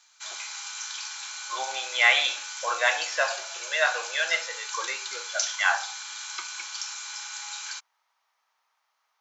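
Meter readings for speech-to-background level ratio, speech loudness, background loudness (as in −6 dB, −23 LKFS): 8.0 dB, −26.0 LKFS, −34.0 LKFS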